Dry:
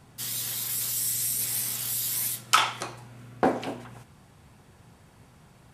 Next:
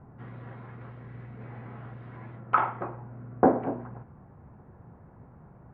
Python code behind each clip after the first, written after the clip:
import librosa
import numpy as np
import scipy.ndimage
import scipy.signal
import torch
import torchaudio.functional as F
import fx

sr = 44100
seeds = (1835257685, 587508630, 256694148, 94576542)

y = scipy.signal.sosfilt(scipy.signal.bessel(6, 1000.0, 'lowpass', norm='mag', fs=sr, output='sos'), x)
y = y * librosa.db_to_amplitude(4.0)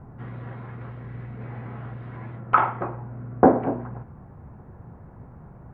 y = fx.low_shelf(x, sr, hz=71.0, db=7.5)
y = y * librosa.db_to_amplitude(5.0)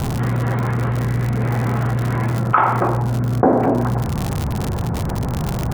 y = fx.dmg_crackle(x, sr, seeds[0], per_s=96.0, level_db=-37.0)
y = fx.env_flatten(y, sr, amount_pct=70)
y = y * librosa.db_to_amplitude(-1.0)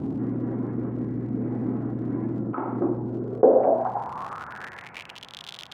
y = fx.filter_sweep_bandpass(x, sr, from_hz=290.0, to_hz=3400.0, start_s=3.0, end_s=5.29, q=4.7)
y = y * librosa.db_to_amplitude(5.0)